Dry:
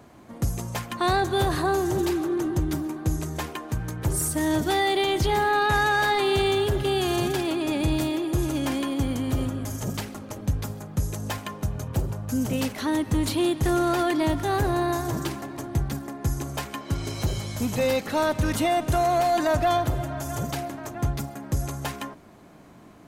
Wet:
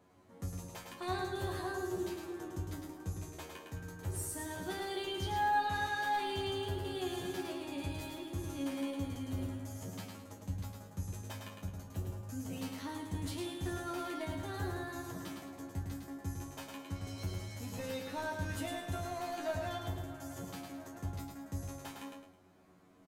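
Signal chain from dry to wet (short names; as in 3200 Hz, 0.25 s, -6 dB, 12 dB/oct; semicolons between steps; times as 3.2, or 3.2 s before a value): resonator 92 Hz, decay 0.21 s, harmonics all, mix 100%; on a send: feedback echo 0.107 s, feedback 32%, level -4.5 dB; on the sum: gain -7.5 dB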